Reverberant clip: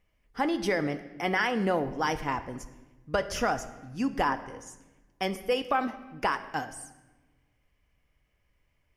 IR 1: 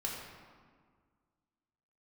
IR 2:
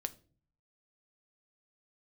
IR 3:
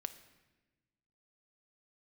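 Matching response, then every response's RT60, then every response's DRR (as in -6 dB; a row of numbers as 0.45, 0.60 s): 3; 1.8, 0.40, 1.2 s; -3.5, 10.0, 10.0 dB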